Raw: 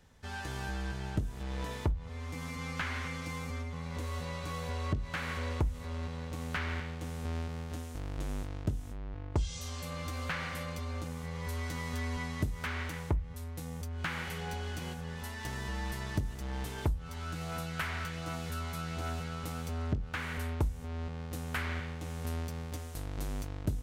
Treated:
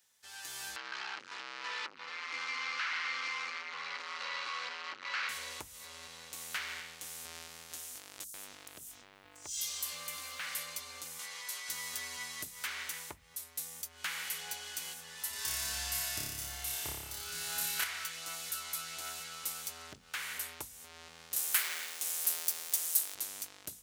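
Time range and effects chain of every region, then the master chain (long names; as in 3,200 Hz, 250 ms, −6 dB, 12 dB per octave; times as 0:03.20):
0:00.76–0:05.29: leveller curve on the samples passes 5 + loudspeaker in its box 400–4,000 Hz, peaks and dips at 410 Hz −4 dB, 660 Hz −9 dB, 1,300 Hz +5 dB, 3,500 Hz −7 dB + downward compressor 2 to 1, threshold −35 dBFS
0:08.24–0:10.47: downward compressor 4 to 1, threshold −37 dBFS + leveller curve on the samples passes 1 + multiband delay without the direct sound highs, lows 100 ms, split 5,600 Hz
0:11.19–0:11.69: high-pass filter 1,000 Hz 6 dB per octave + high-shelf EQ 10,000 Hz −9.5 dB + envelope flattener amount 100%
0:15.30–0:17.84: parametric band 62 Hz +13.5 dB 2.1 octaves + flutter between parallel walls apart 5 metres, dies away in 1.2 s
0:21.36–0:23.15: mu-law and A-law mismatch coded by mu + high-pass filter 310 Hz + high-shelf EQ 6,500 Hz +9.5 dB
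whole clip: automatic gain control gain up to 7 dB; first difference; mains-hum notches 50/100/150/200/250 Hz; level +3 dB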